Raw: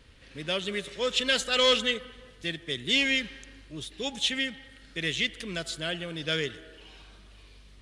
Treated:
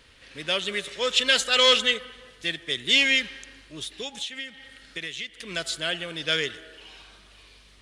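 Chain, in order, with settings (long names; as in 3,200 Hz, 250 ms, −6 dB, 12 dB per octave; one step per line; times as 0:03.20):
low-shelf EQ 390 Hz −10.5 dB
0:03.90–0:05.51: downward compressor 16 to 1, threshold −36 dBFS, peak gain reduction 14.5 dB
level +5.5 dB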